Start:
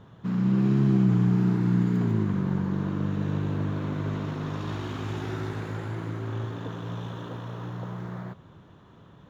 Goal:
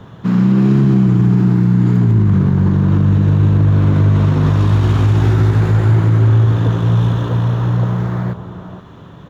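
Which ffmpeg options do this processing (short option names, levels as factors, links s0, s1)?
-filter_complex "[0:a]acrossover=split=110|1600[s0][s1][s2];[s0]dynaudnorm=f=230:g=13:m=5.96[s3];[s1]aecho=1:1:465:0.422[s4];[s2]aeval=exprs='clip(val(0),-1,0.00376)':c=same[s5];[s3][s4][s5]amix=inputs=3:normalize=0,alimiter=level_in=7.5:limit=0.891:release=50:level=0:latency=1,volume=0.631"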